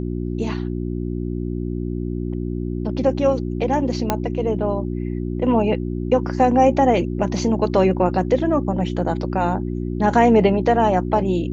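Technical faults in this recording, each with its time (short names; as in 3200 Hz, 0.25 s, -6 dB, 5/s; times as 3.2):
hum 60 Hz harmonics 6 -25 dBFS
4.1 pop -4 dBFS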